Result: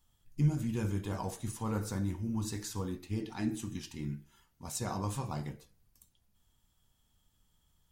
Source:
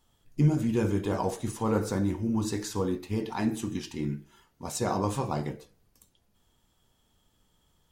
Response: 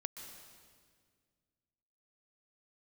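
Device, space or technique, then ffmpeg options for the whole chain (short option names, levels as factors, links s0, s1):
smiley-face EQ: -filter_complex "[0:a]lowshelf=f=140:g=6,equalizer=f=430:t=o:w=1.5:g=-6.5,highshelf=f=7400:g=6.5,asettb=1/sr,asplit=3[s0][s1][s2];[s0]atrim=end=3.034[s3];[s1]atrim=start=3.03:end=3.6,asetpts=PTS-STARTPTS,afade=t=in:d=0.004:c=qsin,afade=t=out:st=0.566:d=0.004:c=qsin,equalizer=f=315:t=o:w=0.33:g=8,equalizer=f=1000:t=o:w=0.33:g=-8,equalizer=f=12500:t=o:w=0.33:g=-10[s4];[s2]atrim=start=3.596[s5];[s3][s4]acrossfade=d=0.004:c1=hsin:c2=qsin[s6];[s6][s5]acrossfade=d=0.004:c1=qsin:c2=hsin,volume=0.473"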